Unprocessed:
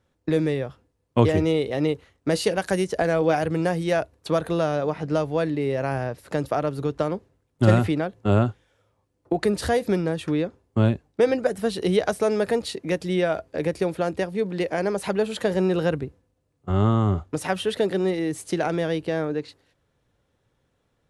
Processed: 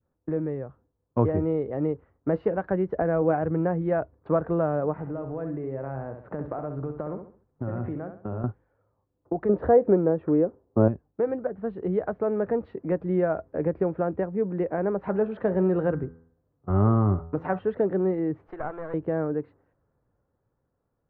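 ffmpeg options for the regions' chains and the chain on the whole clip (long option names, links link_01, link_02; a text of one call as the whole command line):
ffmpeg -i in.wav -filter_complex "[0:a]asettb=1/sr,asplit=3[link_01][link_02][link_03];[link_01]atrim=end=4.924[link_04];[link_02]atrim=start=4.92:end=8.44,asetpts=PTS-STARTPTS,afade=type=in:duration=0.004:curve=qsin,afade=type=out:start_time=3.516:duration=0.004:curve=qsin,acompressor=threshold=-28dB:ratio=5:attack=3.2:release=140:knee=1:detection=peak,aecho=1:1:67|134|201|268:0.422|0.139|0.0459|0.0152,atrim=end_sample=155232[link_05];[link_03]atrim=start=8.436[link_06];[link_04][link_05]acrossfade=duration=0.004:curve1=hsin:curve2=qsin[link_07];[link_07][link_06]acrossfade=duration=0.004:curve1=qsin:curve2=hsin,asettb=1/sr,asplit=3[link_08][link_09][link_10];[link_08]atrim=end=9.494[link_11];[link_09]atrim=start=9.49:end=10.88,asetpts=PTS-STARTPTS,afade=type=in:duration=0.004:curve=qsin,afade=type=out:start_time=1.386:duration=0.004:curve=qsin,lowpass=5200,equalizer=frequency=490:width=0.58:gain=11.5[link_12];[link_10]atrim=start=10.876[link_13];[link_11][link_12]acrossfade=duration=0.004:curve1=hsin:curve2=qsin[link_14];[link_14][link_13]acrossfade=duration=0.004:curve1=qsin:curve2=hsin,asettb=1/sr,asplit=3[link_15][link_16][link_17];[link_15]atrim=end=15.074[link_18];[link_16]atrim=start=15.07:end=17.59,asetpts=PTS-STARTPTS,afade=type=in:duration=0.004:curve=qsin,afade=type=out:start_time=2.516:duration=0.004:curve=qsin,highshelf=frequency=3100:gain=7,bandreject=frequency=82.45:width_type=h:width=4,bandreject=frequency=164.9:width_type=h:width=4,bandreject=frequency=247.35:width_type=h:width=4,bandreject=frequency=329.8:width_type=h:width=4,bandreject=frequency=412.25:width_type=h:width=4,bandreject=frequency=494.7:width_type=h:width=4,bandreject=frequency=577.15:width_type=h:width=4,bandreject=frequency=659.6:width_type=h:width=4,bandreject=frequency=742.05:width_type=h:width=4,bandreject=frequency=824.5:width_type=h:width=4,bandreject=frequency=906.95:width_type=h:width=4,bandreject=frequency=989.4:width_type=h:width=4,bandreject=frequency=1071.85:width_type=h:width=4,bandreject=frequency=1154.3:width_type=h:width=4,bandreject=frequency=1236.75:width_type=h:width=4,bandreject=frequency=1319.2:width_type=h:width=4,bandreject=frequency=1401.65:width_type=h:width=4,bandreject=frequency=1484.1:width_type=h:width=4,bandreject=frequency=1566.55:width_type=h:width=4,bandreject=frequency=1649:width_type=h:width=4,bandreject=frequency=1731.45:width_type=h:width=4,bandreject=frequency=1813.9:width_type=h:width=4,bandreject=frequency=1896.35:width_type=h:width=4,bandreject=frequency=1978.8:width_type=h:width=4[link_19];[link_17]atrim=start=17.586[link_20];[link_18][link_19]acrossfade=duration=0.004:curve1=hsin:curve2=qsin[link_21];[link_21][link_20]acrossfade=duration=0.004:curve1=qsin:curve2=hsin,asettb=1/sr,asplit=3[link_22][link_23][link_24];[link_22]atrim=end=18.474[link_25];[link_23]atrim=start=18.47:end=18.94,asetpts=PTS-STARTPTS,afade=type=in:duration=0.004:curve=qsin,afade=type=out:start_time=0.466:duration=0.004:curve=qsin,highpass=700,aeval=exprs='clip(val(0),-1,0.0126)':channel_layout=same[link_26];[link_24]atrim=start=18.936[link_27];[link_25][link_26]acrossfade=duration=0.004:curve1=hsin:curve2=qsin[link_28];[link_28][link_27]acrossfade=duration=0.004:curve1=qsin:curve2=hsin,lowpass=frequency=1400:width=0.5412,lowpass=frequency=1400:width=1.3066,adynamicequalizer=threshold=0.0141:dfrequency=890:dqfactor=0.79:tfrequency=890:tqfactor=0.79:attack=5:release=100:ratio=0.375:range=1.5:mode=cutabove:tftype=bell,dynaudnorm=framelen=150:gausssize=17:maxgain=6dB,volume=-6dB" out.wav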